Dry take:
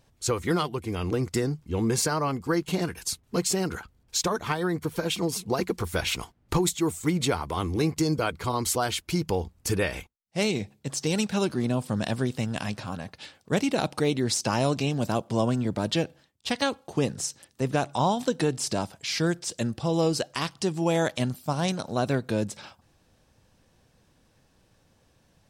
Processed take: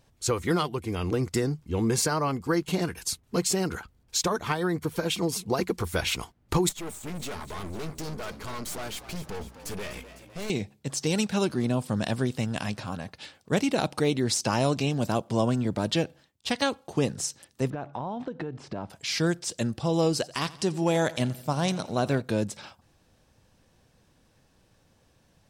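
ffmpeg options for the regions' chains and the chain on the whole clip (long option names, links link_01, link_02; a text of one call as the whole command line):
ffmpeg -i in.wav -filter_complex "[0:a]asettb=1/sr,asplit=3[link_01][link_02][link_03];[link_01]atrim=end=6.694[link_04];[link_02]atrim=start=6.69:end=10.5,asetpts=PTS-STARTPTS,afade=type=in:duration=0.004:curve=qsin,afade=type=out:start_time=3.806:duration=0.004:curve=qsin,aecho=1:1:4.7:0.4,atrim=end_sample=168021,aeval=exprs='(tanh(50.1*val(0)+0.8)-tanh(0.8))/50.1':channel_layout=same,asplit=8[link_05][link_06][link_07][link_08][link_09][link_10][link_11][link_12];[link_06]adelay=252,afreqshift=59,volume=-13.5dB[link_13];[link_07]adelay=504,afreqshift=118,volume=-17.7dB[link_14];[link_08]adelay=756,afreqshift=177,volume=-21.8dB[link_15];[link_09]adelay=1008,afreqshift=236,volume=-26dB[link_16];[link_10]adelay=1260,afreqshift=295,volume=-30.1dB[link_17];[link_11]adelay=1512,afreqshift=354,volume=-34.3dB[link_18];[link_12]adelay=1764,afreqshift=413,volume=-38.4dB[link_19];[link_05][link_13][link_14][link_15][link_16][link_17][link_18][link_19]amix=inputs=8:normalize=0,atrim=end_sample=168021[link_20];[link_03]atrim=start=10.496[link_21];[link_04][link_20]acrossfade=duration=0.004:curve1=hsin:curve2=qsin[link_22];[link_22][link_21]acrossfade=duration=0.004:curve1=qsin:curve2=hsin,asettb=1/sr,asplit=3[link_23][link_24][link_25];[link_23]atrim=end=17.704[link_26];[link_24]atrim=start=17.7:end=18.9,asetpts=PTS-STARTPTS,afade=type=in:duration=0.004:curve=qsin,afade=type=out:start_time=1.196:duration=0.004:curve=qsin,lowpass=1800,acompressor=threshold=-29dB:ratio=10:attack=3.2:release=140:knee=1:detection=peak[link_27];[link_25]atrim=start=18.896[link_28];[link_26][link_27]acrossfade=duration=0.004:curve1=hsin:curve2=qsin[link_29];[link_29][link_28]acrossfade=duration=0.004:curve1=qsin:curve2=hsin,asettb=1/sr,asplit=3[link_30][link_31][link_32];[link_30]atrim=end=20.134[link_33];[link_31]atrim=start=20.13:end=22.22,asetpts=PTS-STARTPTS,afade=type=in:duration=0.004:curve=qsin,afade=type=out:start_time=2.086:duration=0.004:curve=qsin,asoftclip=type=hard:threshold=-15.5dB,aecho=1:1:86|172|258|344|430:0.106|0.0625|0.0369|0.0218|0.0128,atrim=end_sample=92169[link_34];[link_32]atrim=start=22.216[link_35];[link_33][link_34]acrossfade=duration=0.004:curve1=hsin:curve2=qsin[link_36];[link_36][link_35]acrossfade=duration=0.004:curve1=qsin:curve2=hsin" out.wav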